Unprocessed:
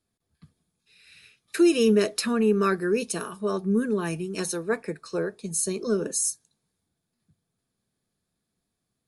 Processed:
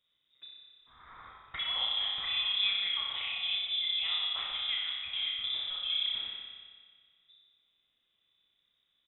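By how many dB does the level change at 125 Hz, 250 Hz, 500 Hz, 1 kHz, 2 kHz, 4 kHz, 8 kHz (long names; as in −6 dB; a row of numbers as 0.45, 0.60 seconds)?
below −25 dB, below −40 dB, below −35 dB, −11.0 dB, −4.0 dB, +11.0 dB, below −40 dB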